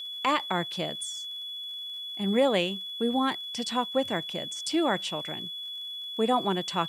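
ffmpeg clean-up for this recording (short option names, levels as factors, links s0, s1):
-af "adeclick=t=4,bandreject=f=3400:w=30,agate=range=0.0891:threshold=0.0316"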